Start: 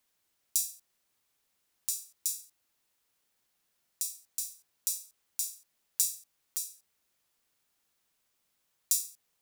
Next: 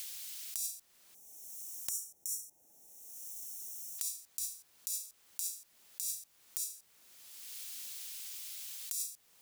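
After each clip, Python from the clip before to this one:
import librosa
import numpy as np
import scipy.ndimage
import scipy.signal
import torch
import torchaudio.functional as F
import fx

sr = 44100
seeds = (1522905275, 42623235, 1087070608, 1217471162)

y = fx.over_compress(x, sr, threshold_db=-38.0, ratio=-1.0)
y = fx.spec_box(y, sr, start_s=1.14, length_s=2.85, low_hz=900.0, high_hz=5400.0, gain_db=-19)
y = fx.band_squash(y, sr, depth_pct=100)
y = F.gain(torch.from_numpy(y), 1.5).numpy()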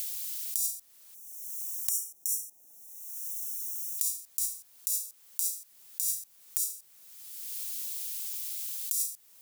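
y = fx.high_shelf(x, sr, hz=6400.0, db=11.5)
y = F.gain(torch.from_numpy(y), -1.0).numpy()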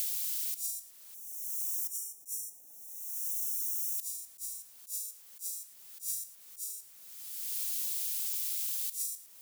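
y = fx.auto_swell(x, sr, attack_ms=231.0)
y = np.clip(10.0 ** (25.5 / 20.0) * y, -1.0, 1.0) / 10.0 ** (25.5 / 20.0)
y = y + 10.0 ** (-14.0 / 20.0) * np.pad(y, (int(110 * sr / 1000.0), 0))[:len(y)]
y = F.gain(torch.from_numpy(y), 2.0).numpy()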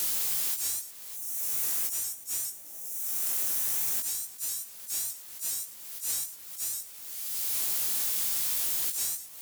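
y = fx.leveller(x, sr, passes=3)
y = fx.doubler(y, sr, ms=19.0, db=-3.5)
y = fx.vibrato_shape(y, sr, shape='saw_up', rate_hz=4.9, depth_cents=100.0)
y = F.gain(torch.from_numpy(y), -2.5).numpy()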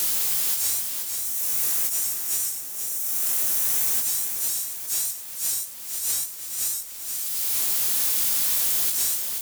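y = fx.echo_feedback(x, sr, ms=483, feedback_pct=46, wet_db=-6.0)
y = F.gain(torch.from_numpy(y), 5.5).numpy()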